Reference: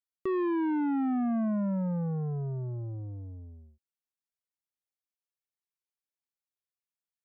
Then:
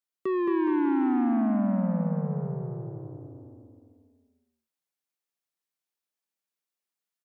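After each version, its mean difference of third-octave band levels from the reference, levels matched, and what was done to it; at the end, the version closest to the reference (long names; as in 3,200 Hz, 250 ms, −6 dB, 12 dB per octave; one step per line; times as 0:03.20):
5.5 dB: high-pass filter 150 Hz 24 dB per octave
bouncing-ball delay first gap 220 ms, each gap 0.9×, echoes 5
level +2 dB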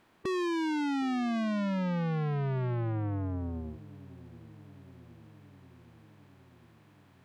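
11.5 dB: compressor on every frequency bin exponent 0.6
soft clipping −37.5 dBFS, distortion −10 dB
on a send: delay with a low-pass on its return 764 ms, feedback 68%, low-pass 460 Hz, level −18.5 dB
on the sum: level +7.5 dB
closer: first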